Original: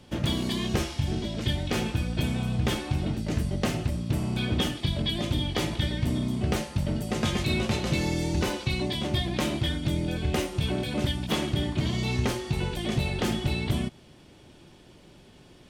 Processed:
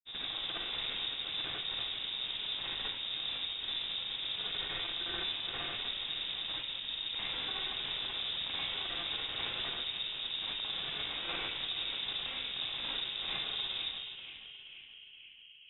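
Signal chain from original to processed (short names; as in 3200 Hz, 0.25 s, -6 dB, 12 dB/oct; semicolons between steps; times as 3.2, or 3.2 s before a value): Chebyshev band-stop 190–970 Hz, order 5; low shelf 450 Hz -5 dB; notches 50/100/150/200 Hz; compressor 5:1, threshold -44 dBFS, peak gain reduction 16 dB; Schmitt trigger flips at -44.5 dBFS; grains; narrowing echo 0.479 s, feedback 80%, band-pass 790 Hz, level -4.5 dB; reverb RT60 0.55 s, pre-delay 43 ms, DRR -7 dB; careless resampling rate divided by 8×, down none, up zero stuff; inverted band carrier 3700 Hz; gain +2 dB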